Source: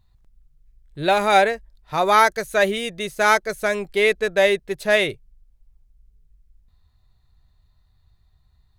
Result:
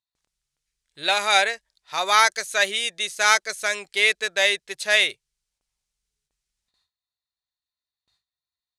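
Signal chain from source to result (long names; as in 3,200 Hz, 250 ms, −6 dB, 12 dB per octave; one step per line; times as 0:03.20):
noise gate with hold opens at −48 dBFS
meter weighting curve ITU-R 468
level −4 dB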